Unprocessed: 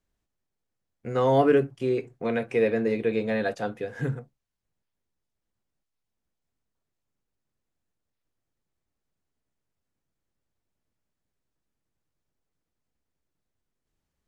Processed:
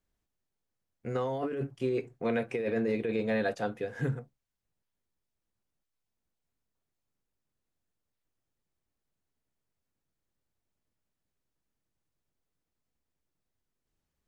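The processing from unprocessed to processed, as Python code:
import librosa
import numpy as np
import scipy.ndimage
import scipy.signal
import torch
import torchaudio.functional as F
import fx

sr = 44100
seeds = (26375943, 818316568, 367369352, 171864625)

y = fx.over_compress(x, sr, threshold_db=-25.0, ratio=-1.0)
y = F.gain(torch.from_numpy(y), -4.5).numpy()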